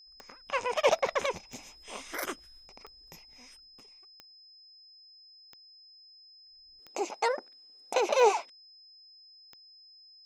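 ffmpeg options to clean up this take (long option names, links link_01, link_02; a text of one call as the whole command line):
ffmpeg -i in.wav -af "adeclick=threshold=4,bandreject=frequency=5100:width=30" out.wav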